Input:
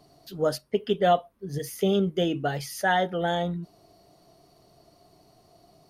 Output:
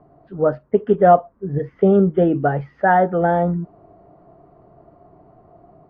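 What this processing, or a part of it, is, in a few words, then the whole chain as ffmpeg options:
action camera in a waterproof case: -af "lowpass=f=1.5k:w=0.5412,lowpass=f=1.5k:w=1.3066,dynaudnorm=f=390:g=3:m=3dB,volume=6.5dB" -ar 22050 -c:a aac -b:a 48k

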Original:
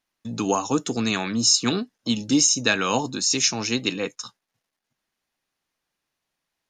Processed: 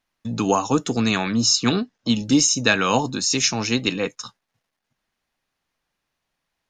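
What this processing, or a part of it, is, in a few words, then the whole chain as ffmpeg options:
low shelf boost with a cut just above: -filter_complex "[0:a]lowshelf=f=68:g=7,equalizer=f=340:t=o:w=0.71:g=-2.5,asettb=1/sr,asplit=3[a][b][c];[a]atrim=end=1.184[d];[b]atrim=start=1.18:end=2.14,asetpts=PTS-STARTPTS,afade=t=in:d=0.004:c=qsin,afade=t=out:st=0.956:d=0.004:c=qsin,lowpass=f=7.5k:w=0.5412,lowpass=f=7.5k:w=1.3066[e];[c]atrim=start=2.136[f];[d][e]acrossfade=d=0.004:c1=hsin:c2=qsin[g];[g][f]acrossfade=d=0.004:c1=qsin:c2=hsin,highshelf=f=4.9k:g=-6.5,volume=4dB"

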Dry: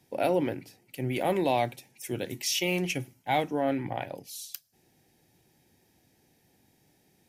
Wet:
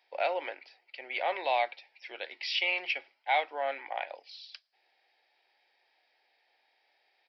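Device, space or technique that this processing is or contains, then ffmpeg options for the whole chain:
musical greeting card: -af "aresample=11025,aresample=44100,highpass=f=620:w=0.5412,highpass=f=620:w=1.3066,equalizer=f=2.2k:t=o:w=0.47:g=4.5"

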